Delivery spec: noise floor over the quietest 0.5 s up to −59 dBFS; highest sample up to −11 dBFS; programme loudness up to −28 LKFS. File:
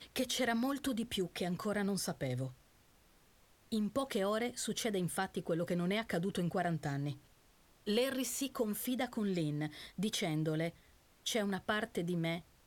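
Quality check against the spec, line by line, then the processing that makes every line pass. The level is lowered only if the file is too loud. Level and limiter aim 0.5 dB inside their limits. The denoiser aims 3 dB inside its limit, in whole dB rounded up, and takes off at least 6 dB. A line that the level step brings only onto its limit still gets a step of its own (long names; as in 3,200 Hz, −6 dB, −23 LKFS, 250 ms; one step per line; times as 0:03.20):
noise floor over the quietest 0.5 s −66 dBFS: in spec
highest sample −20.0 dBFS: in spec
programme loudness −36.5 LKFS: in spec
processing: no processing needed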